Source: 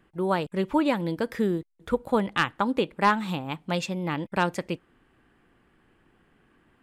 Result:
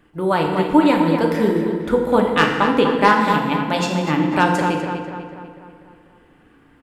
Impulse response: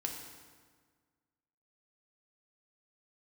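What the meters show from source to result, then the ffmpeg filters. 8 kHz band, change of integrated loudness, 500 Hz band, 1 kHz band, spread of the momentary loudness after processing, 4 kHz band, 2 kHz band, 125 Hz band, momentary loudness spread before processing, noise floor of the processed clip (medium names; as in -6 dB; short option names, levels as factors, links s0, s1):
+8.0 dB, +9.5 dB, +9.5 dB, +10.0 dB, 8 LU, +8.5 dB, +9.5 dB, +8.5 dB, 8 LU, -53 dBFS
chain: -filter_complex "[0:a]asplit=2[s0][s1];[s1]adelay=246,lowpass=f=3300:p=1,volume=0.447,asplit=2[s2][s3];[s3]adelay=246,lowpass=f=3300:p=1,volume=0.54,asplit=2[s4][s5];[s5]adelay=246,lowpass=f=3300:p=1,volume=0.54,asplit=2[s6][s7];[s7]adelay=246,lowpass=f=3300:p=1,volume=0.54,asplit=2[s8][s9];[s9]adelay=246,lowpass=f=3300:p=1,volume=0.54,asplit=2[s10][s11];[s11]adelay=246,lowpass=f=3300:p=1,volume=0.54,asplit=2[s12][s13];[s13]adelay=246,lowpass=f=3300:p=1,volume=0.54[s14];[s0][s2][s4][s6][s8][s10][s12][s14]amix=inputs=8:normalize=0[s15];[1:a]atrim=start_sample=2205,afade=t=out:st=0.31:d=0.01,atrim=end_sample=14112[s16];[s15][s16]afir=irnorm=-1:irlink=0,volume=2.37"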